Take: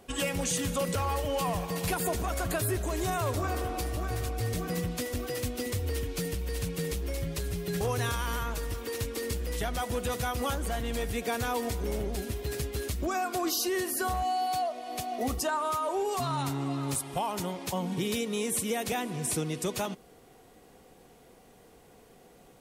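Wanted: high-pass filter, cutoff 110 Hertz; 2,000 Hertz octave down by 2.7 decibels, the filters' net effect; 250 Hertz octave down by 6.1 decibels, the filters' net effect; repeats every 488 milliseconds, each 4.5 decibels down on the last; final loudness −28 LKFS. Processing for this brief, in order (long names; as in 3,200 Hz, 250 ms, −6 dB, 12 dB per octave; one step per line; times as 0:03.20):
high-pass filter 110 Hz
parametric band 250 Hz −8.5 dB
parametric band 2,000 Hz −3.5 dB
repeating echo 488 ms, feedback 60%, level −4.5 dB
level +4 dB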